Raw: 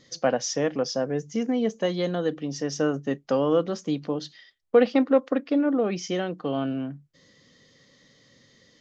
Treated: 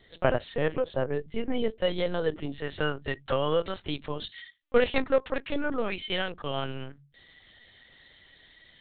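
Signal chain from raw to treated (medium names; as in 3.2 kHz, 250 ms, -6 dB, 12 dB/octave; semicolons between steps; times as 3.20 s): de-hum 46.29 Hz, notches 3; tilt shelf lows -3 dB, about 860 Hz, from 2.56 s lows -9 dB; LPC vocoder at 8 kHz pitch kept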